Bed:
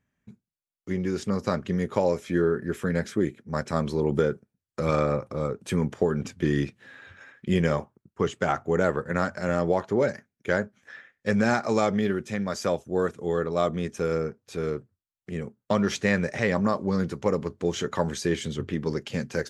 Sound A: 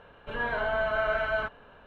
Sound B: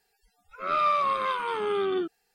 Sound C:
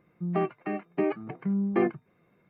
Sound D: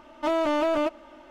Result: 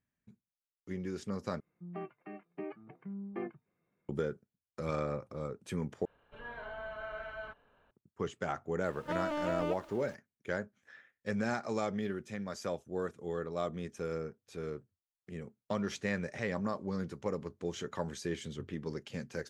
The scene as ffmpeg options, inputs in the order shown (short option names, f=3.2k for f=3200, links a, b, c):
-filter_complex "[0:a]volume=-11dB[a];[4:a]aeval=exprs='val(0)+0.5*0.00631*sgn(val(0))':c=same[b];[a]asplit=3[c][d][e];[c]atrim=end=1.604[f];[3:a]atrim=end=2.49,asetpts=PTS-STARTPTS,volume=-15dB[g];[d]atrim=start=4.086:end=6.054[h];[1:a]atrim=end=1.86,asetpts=PTS-STARTPTS,volume=-15dB[i];[e]atrim=start=7.906[j];[b]atrim=end=1.3,asetpts=PTS-STARTPTS,volume=-11.5dB,afade=t=in:d=0.004:c=hsin,afade=t=out:st=1.296:d=0.004:c=hsin,adelay=8850[k];[f][g]acrossfade=d=0.004:c1=hsin:c2=hsin[l];[l][h]acrossfade=d=0.004:c1=hsin:c2=hsin[m];[m][i]acrossfade=d=0.004:c1=hsin:c2=hsin[n];[n][j]acrossfade=d=0.004:c1=hsin:c2=hsin[o];[o][k]amix=inputs=2:normalize=0"